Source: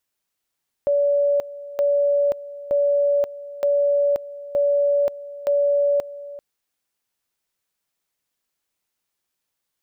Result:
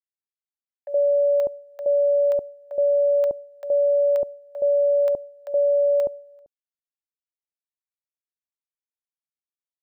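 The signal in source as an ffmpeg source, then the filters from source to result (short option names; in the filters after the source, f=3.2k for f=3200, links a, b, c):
-f lavfi -i "aevalsrc='pow(10,(-15.5-17*gte(mod(t,0.92),0.53))/20)*sin(2*PI*572*t)':d=5.52:s=44100"
-filter_complex "[0:a]agate=range=-33dB:threshold=-27dB:ratio=3:detection=peak,acrossover=split=780[a][b];[a]adelay=70[c];[c][b]amix=inputs=2:normalize=0"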